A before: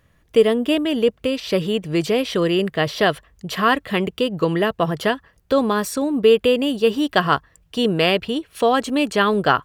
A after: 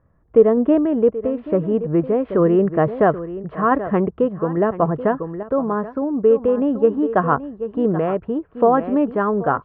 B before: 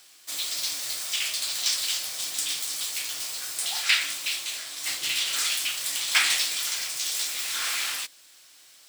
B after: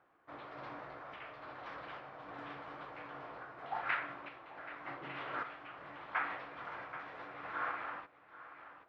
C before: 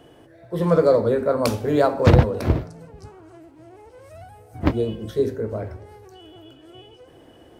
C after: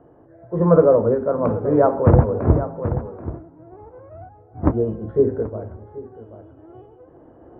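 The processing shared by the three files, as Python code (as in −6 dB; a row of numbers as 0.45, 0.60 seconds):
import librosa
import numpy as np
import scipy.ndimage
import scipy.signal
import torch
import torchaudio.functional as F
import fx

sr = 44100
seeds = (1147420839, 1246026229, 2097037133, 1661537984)

y = scipy.signal.sosfilt(scipy.signal.butter(4, 1300.0, 'lowpass', fs=sr, output='sos'), x)
y = y + 10.0 ** (-13.0 / 20.0) * np.pad(y, (int(781 * sr / 1000.0), 0))[:len(y)]
y = fx.tremolo_random(y, sr, seeds[0], hz=3.5, depth_pct=55)
y = y * 10.0 ** (4.5 / 20.0)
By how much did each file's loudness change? +0.5, −18.0, +2.0 LU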